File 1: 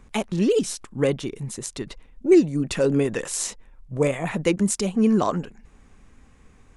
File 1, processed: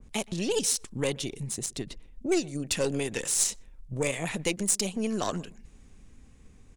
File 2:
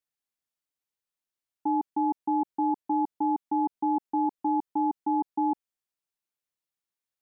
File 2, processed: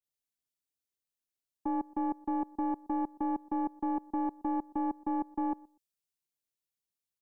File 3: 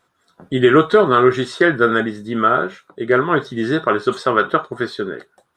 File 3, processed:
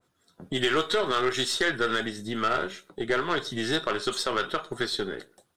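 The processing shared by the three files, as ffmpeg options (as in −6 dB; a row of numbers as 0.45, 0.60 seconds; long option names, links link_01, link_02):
-filter_complex "[0:a]equalizer=frequency=1200:width=0.56:gain=-9.5,acrossover=split=510[link_01][link_02];[link_01]acompressor=threshold=-32dB:ratio=6[link_03];[link_03][link_02]amix=inputs=2:normalize=0,alimiter=limit=-16.5dB:level=0:latency=1:release=102,aeval=exprs='0.15*(cos(1*acos(clip(val(0)/0.15,-1,1)))-cos(1*PI/2))+0.0119*(cos(4*acos(clip(val(0)/0.15,-1,1)))-cos(4*PI/2))+0.000944*(cos(7*acos(clip(val(0)/0.15,-1,1)))-cos(7*PI/2))+0.00133*(cos(8*acos(clip(val(0)/0.15,-1,1)))-cos(8*PI/2))':channel_layout=same,asplit=2[link_04][link_05];[link_05]adelay=122,lowpass=frequency=1300:poles=1,volume=-22.5dB,asplit=2[link_06][link_07];[link_07]adelay=122,lowpass=frequency=1300:poles=1,volume=0.2[link_08];[link_06][link_08]amix=inputs=2:normalize=0[link_09];[link_04][link_09]amix=inputs=2:normalize=0,adynamicequalizer=threshold=0.00794:dfrequency=1900:dqfactor=0.7:tfrequency=1900:tqfactor=0.7:attack=5:release=100:ratio=0.375:range=3.5:mode=boostabove:tftype=highshelf"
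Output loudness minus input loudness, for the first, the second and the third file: −6.0, −5.5, −10.5 LU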